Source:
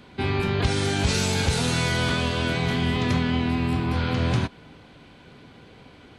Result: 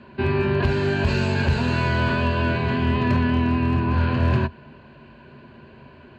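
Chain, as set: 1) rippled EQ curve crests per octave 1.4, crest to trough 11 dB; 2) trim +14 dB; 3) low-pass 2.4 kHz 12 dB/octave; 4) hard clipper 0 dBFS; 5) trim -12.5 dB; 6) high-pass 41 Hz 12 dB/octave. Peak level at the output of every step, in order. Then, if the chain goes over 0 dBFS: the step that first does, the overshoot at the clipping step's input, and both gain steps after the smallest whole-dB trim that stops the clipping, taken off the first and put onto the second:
-9.5 dBFS, +4.5 dBFS, +3.5 dBFS, 0.0 dBFS, -12.5 dBFS, -8.5 dBFS; step 2, 3.5 dB; step 2 +10 dB, step 5 -8.5 dB

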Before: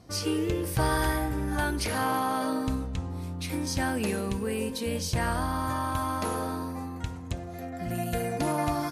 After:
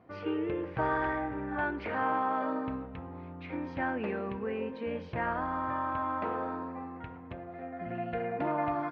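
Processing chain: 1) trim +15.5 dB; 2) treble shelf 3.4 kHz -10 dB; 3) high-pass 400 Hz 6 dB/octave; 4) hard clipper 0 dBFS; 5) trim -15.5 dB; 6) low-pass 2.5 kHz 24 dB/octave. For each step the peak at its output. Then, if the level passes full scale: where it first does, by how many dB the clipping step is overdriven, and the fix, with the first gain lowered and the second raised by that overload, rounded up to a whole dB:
-1.5 dBFS, -1.5 dBFS, -2.0 dBFS, -2.0 dBFS, -17.5 dBFS, -17.5 dBFS; nothing clips

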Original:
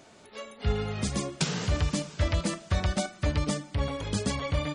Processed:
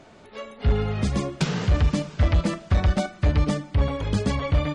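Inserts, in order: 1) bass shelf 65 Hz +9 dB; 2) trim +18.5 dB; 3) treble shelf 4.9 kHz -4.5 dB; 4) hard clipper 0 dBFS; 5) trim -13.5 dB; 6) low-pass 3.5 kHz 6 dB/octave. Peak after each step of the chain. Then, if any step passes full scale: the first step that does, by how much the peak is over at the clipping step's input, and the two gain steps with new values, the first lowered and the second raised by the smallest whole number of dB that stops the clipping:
-12.0 dBFS, +6.5 dBFS, +6.5 dBFS, 0.0 dBFS, -13.5 dBFS, -13.5 dBFS; step 2, 6.5 dB; step 2 +11.5 dB, step 5 -6.5 dB

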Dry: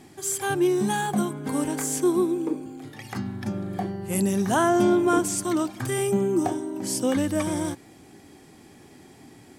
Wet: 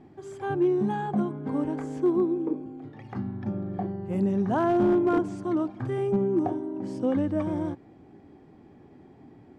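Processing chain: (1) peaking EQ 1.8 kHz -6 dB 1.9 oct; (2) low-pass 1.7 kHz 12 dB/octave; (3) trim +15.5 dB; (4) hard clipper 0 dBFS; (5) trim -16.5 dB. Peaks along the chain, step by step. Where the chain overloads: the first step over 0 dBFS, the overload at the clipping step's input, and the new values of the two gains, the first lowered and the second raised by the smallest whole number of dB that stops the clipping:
-12.0 dBFS, -12.0 dBFS, +3.5 dBFS, 0.0 dBFS, -16.5 dBFS; step 3, 3.5 dB; step 3 +11.5 dB, step 5 -12.5 dB

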